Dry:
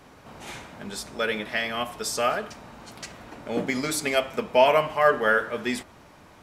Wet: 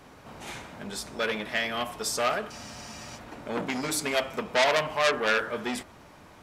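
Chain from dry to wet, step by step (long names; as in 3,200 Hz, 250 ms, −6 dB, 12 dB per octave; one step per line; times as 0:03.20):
frozen spectrum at 0:02.52, 0.64 s
saturating transformer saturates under 3,500 Hz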